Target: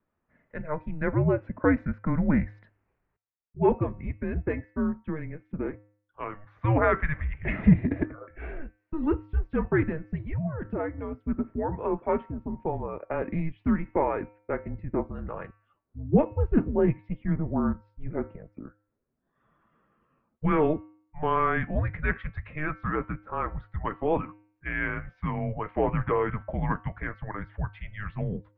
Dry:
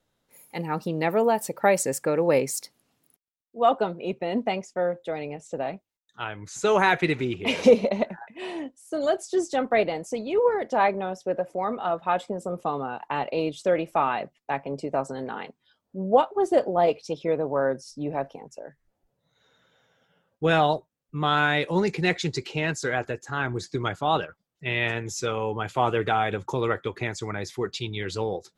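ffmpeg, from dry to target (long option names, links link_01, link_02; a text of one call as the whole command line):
ffmpeg -i in.wav -filter_complex "[0:a]bandreject=frequency=206.6:width_type=h:width=4,bandreject=frequency=413.2:width_type=h:width=4,bandreject=frequency=619.8:width_type=h:width=4,bandreject=frequency=826.4:width_type=h:width=4,bandreject=frequency=1033:width_type=h:width=4,bandreject=frequency=1239.6:width_type=h:width=4,bandreject=frequency=1446.2:width_type=h:width=4,bandreject=frequency=1652.8:width_type=h:width=4,bandreject=frequency=1859.4:width_type=h:width=4,bandreject=frequency=2066:width_type=h:width=4,bandreject=frequency=2272.6:width_type=h:width=4,bandreject=frequency=2479.2:width_type=h:width=4,bandreject=frequency=2685.8:width_type=h:width=4,bandreject=frequency=2892.4:width_type=h:width=4,bandreject=frequency=3099:width_type=h:width=4,bandreject=frequency=3305.6:width_type=h:width=4,asettb=1/sr,asplit=3[link_01][link_02][link_03];[link_01]atrim=end=10.274[link_04];[link_02]atrim=start=10.27:end=11.11,asetpts=PTS-STARTPTS,afade=type=in:duration=0.004:curve=qsin,afade=type=out:start_time=0.836:duration=0.004:curve=qsin,acompressor=threshold=-26dB:ratio=5[link_05];[link_03]atrim=start=11.106[link_06];[link_04][link_05]acrossfade=duration=0.004:curve1=hsin:curve2=qsin[link_07];[link_07][link_06]acrossfade=duration=0.004:curve1=qsin:curve2=hsin,highpass=frequency=230:width_type=q:width=0.5412,highpass=frequency=230:width_type=q:width=1.307,lowpass=frequency=2400:width_type=q:width=0.5176,lowpass=frequency=2400:width_type=q:width=0.7071,lowpass=frequency=2400:width_type=q:width=1.932,afreqshift=-310,volume=-1.5dB" out.wav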